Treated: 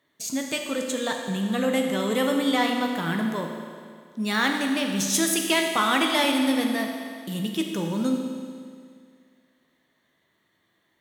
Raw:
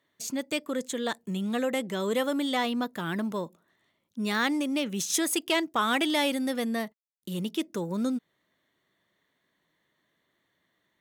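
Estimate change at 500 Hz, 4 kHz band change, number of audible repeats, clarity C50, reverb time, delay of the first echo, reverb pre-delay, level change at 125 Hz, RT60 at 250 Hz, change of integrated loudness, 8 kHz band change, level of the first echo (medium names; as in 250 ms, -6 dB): +3.5 dB, +5.0 dB, no echo, 4.0 dB, 2.1 s, no echo, 12 ms, +5.0 dB, 2.1 s, +4.5 dB, +5.0 dB, no echo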